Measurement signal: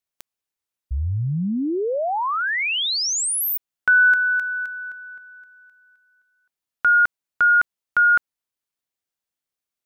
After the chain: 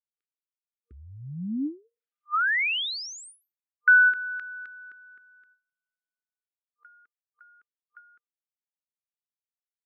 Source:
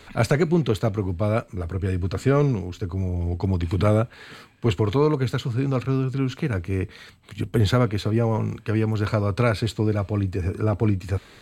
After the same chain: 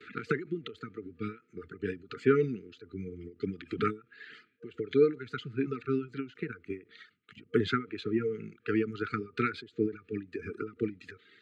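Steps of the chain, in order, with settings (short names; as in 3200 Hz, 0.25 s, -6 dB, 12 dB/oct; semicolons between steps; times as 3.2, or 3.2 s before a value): gate with hold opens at -42 dBFS, closes at -46 dBFS, hold 85 ms, range -25 dB; FFT band-reject 470–1200 Hz; reverb removal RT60 1.7 s; BPF 270–2500 Hz; ending taper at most 210 dB/s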